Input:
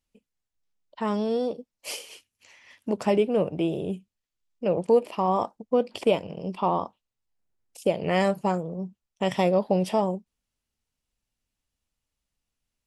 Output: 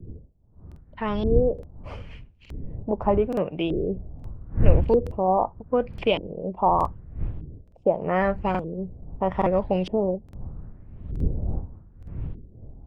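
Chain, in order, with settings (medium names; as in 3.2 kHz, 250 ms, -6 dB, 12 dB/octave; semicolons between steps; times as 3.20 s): wind noise 81 Hz -28 dBFS; LFO low-pass saw up 0.81 Hz 340–3400 Hz; crackling interface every 0.87 s, samples 2048, repeat, from 0.67 s; trim -1 dB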